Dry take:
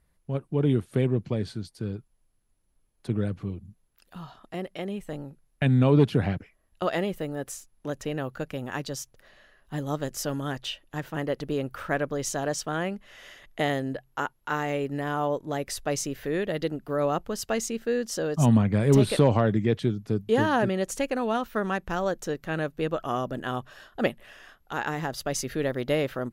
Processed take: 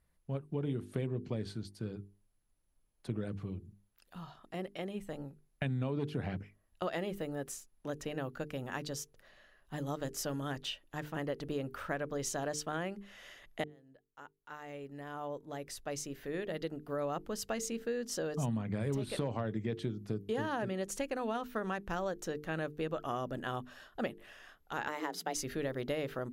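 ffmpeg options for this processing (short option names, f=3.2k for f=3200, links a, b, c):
-filter_complex "[0:a]asettb=1/sr,asplit=3[a][b][c];[a]atrim=end=24.884[d];[b]atrim=start=24.88:end=25.35,asetpts=PTS-STARTPTS,afade=t=in:d=0.004:c=qsin,afade=t=out:st=0.466:d=0.004:c=qsin,afreqshift=150[e];[c]atrim=start=25.346[f];[d][e]acrossfade=d=0.004:c1=hsin:c2=qsin[g];[g][f]acrossfade=d=0.004:c1=qsin:c2=hsin,asplit=2[h][i];[h]atrim=end=13.64,asetpts=PTS-STARTPTS,afade=t=out:st=13.636:d=0.004:c=hsin[j];[i]atrim=start=13.64,asetpts=PTS-STARTPTS,afade=t=in:d=4.1[k];[j][k]concat=n=2:v=0:a=1,bandreject=f=50:t=h:w=6,bandreject=f=100:t=h:w=6,bandreject=f=150:t=h:w=6,bandreject=f=200:t=h:w=6,bandreject=f=250:t=h:w=6,bandreject=f=300:t=h:w=6,bandreject=f=350:t=h:w=6,bandreject=f=400:t=h:w=6,bandreject=f=450:t=h:w=6,acompressor=threshold=-26dB:ratio=6,volume=-5.5dB"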